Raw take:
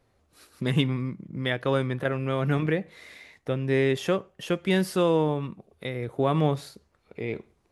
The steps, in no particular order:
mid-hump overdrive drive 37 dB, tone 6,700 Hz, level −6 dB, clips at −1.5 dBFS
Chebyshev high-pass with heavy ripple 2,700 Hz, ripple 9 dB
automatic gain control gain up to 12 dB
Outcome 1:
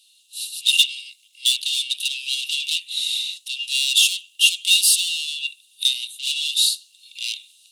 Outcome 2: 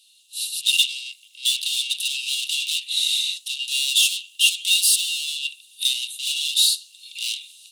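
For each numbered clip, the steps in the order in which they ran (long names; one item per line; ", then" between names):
mid-hump overdrive, then automatic gain control, then Chebyshev high-pass with heavy ripple
automatic gain control, then mid-hump overdrive, then Chebyshev high-pass with heavy ripple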